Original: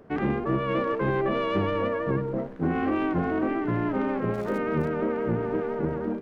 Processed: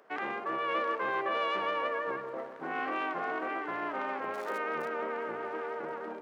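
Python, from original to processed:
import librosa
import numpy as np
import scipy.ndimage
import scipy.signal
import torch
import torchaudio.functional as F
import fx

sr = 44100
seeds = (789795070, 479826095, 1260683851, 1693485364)

y = scipy.signal.sosfilt(scipy.signal.butter(2, 770.0, 'highpass', fs=sr, output='sos'), x)
y = fx.echo_wet_lowpass(y, sr, ms=132, feedback_pct=71, hz=1100.0, wet_db=-11.0)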